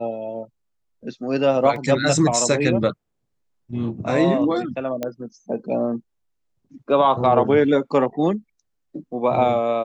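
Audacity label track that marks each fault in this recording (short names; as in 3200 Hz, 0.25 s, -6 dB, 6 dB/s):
1.760000	1.760000	gap 2.2 ms
5.030000	5.030000	pop -12 dBFS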